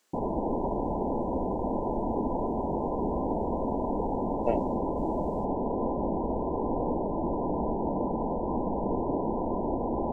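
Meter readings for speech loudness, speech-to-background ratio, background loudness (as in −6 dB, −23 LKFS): −34.5 LKFS, −4.0 dB, −30.5 LKFS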